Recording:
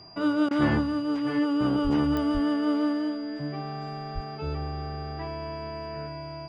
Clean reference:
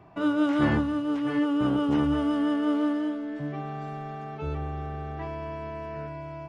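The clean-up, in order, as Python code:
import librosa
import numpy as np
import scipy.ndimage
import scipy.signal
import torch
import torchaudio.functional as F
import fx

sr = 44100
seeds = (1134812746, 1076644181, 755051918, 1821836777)

y = fx.fix_declick_ar(x, sr, threshold=10.0)
y = fx.notch(y, sr, hz=4800.0, q=30.0)
y = fx.highpass(y, sr, hz=140.0, slope=24, at=(1.83, 1.95), fade=0.02)
y = fx.highpass(y, sr, hz=140.0, slope=24, at=(2.33, 2.45), fade=0.02)
y = fx.highpass(y, sr, hz=140.0, slope=24, at=(4.14, 4.26), fade=0.02)
y = fx.fix_interpolate(y, sr, at_s=(0.49,), length_ms=18.0)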